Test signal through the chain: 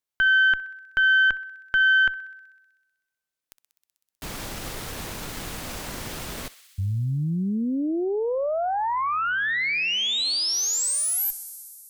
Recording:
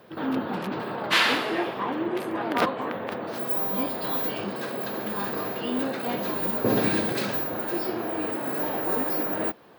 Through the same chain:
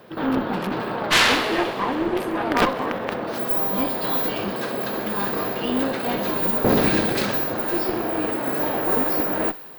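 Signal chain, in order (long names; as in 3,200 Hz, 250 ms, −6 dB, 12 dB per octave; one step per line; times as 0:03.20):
feedback echo with a high-pass in the loop 63 ms, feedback 85%, high-pass 1,200 Hz, level −16 dB
harmonic generator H 4 −9 dB, 5 −11 dB, 7 −20 dB, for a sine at −8 dBFS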